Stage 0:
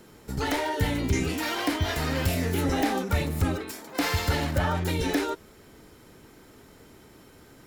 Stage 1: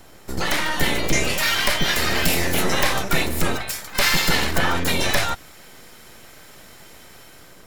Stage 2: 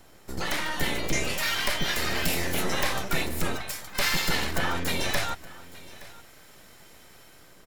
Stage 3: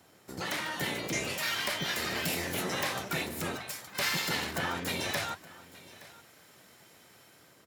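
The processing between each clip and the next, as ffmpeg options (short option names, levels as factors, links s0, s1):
-filter_complex "[0:a]acrossover=split=1200[s0][s1];[s0]aeval=exprs='abs(val(0))':c=same[s2];[s1]dynaudnorm=f=230:g=5:m=1.88[s3];[s2][s3]amix=inputs=2:normalize=0,volume=2.11"
-af "aecho=1:1:870:0.106,volume=0.447"
-af "highpass=f=91:w=0.5412,highpass=f=91:w=1.3066,flanger=delay=0.7:depth=7.9:regen=-79:speed=1.6:shape=triangular"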